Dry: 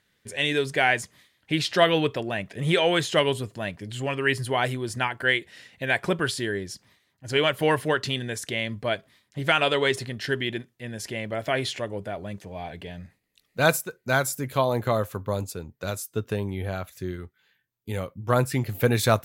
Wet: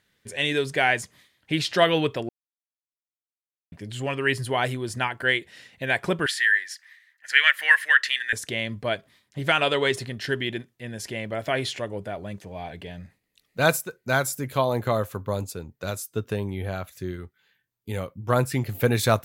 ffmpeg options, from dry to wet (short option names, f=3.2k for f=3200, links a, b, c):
-filter_complex "[0:a]asettb=1/sr,asplit=3[a][b][c];[a]atrim=end=6.264[d];[b]atrim=start=6.26:end=8.33,asetpts=PTS-STARTPTS,afade=t=in:d=0.004:c=qsin,afade=t=out:st=2.066:d=0.004:c=qsin,highpass=f=1.8k:t=q:w=7.3[e];[c]atrim=start=8.326[f];[d][e]acrossfade=d=0.004:c1=hsin:c2=qsin[g];[g][f]acrossfade=d=0.004:c1=qsin:c2=hsin,asplit=3[h][i][j];[h]atrim=end=2.29,asetpts=PTS-STARTPTS,afade=t=out:st=2.286:d=0.004:c=hsin[k];[i]atrim=start=2.29:end=3.72,asetpts=PTS-STARTPTS,volume=0[l];[j]atrim=start=3.72,asetpts=PTS-STARTPTS,afade=t=in:d=0.004:c=hsin[m];[k][l][m]concat=n=3:v=0:a=1"